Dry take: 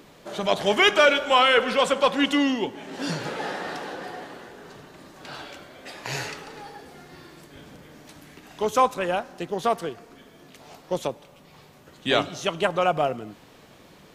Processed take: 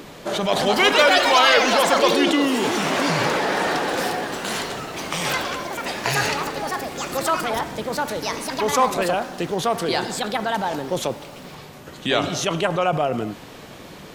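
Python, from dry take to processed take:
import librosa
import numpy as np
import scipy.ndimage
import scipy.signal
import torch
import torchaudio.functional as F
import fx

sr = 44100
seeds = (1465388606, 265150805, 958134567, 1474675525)

p1 = fx.over_compress(x, sr, threshold_db=-33.0, ratio=-1.0)
p2 = x + F.gain(torch.from_numpy(p1), 1.0).numpy()
y = fx.echo_pitch(p2, sr, ms=316, semitones=4, count=3, db_per_echo=-3.0)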